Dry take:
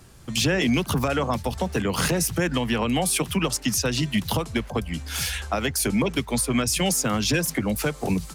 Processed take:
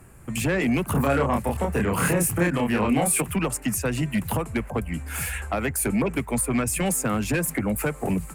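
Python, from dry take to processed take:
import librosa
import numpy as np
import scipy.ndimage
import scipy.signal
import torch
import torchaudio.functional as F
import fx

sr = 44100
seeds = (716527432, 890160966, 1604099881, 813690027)

y = fx.band_shelf(x, sr, hz=4400.0, db=-15.5, octaves=1.2)
y = fx.fold_sine(y, sr, drive_db=3, ceiling_db=-11.5)
y = fx.doubler(y, sr, ms=29.0, db=-2.0, at=(0.94, 3.2), fade=0.02)
y = y * 10.0 ** (-6.0 / 20.0)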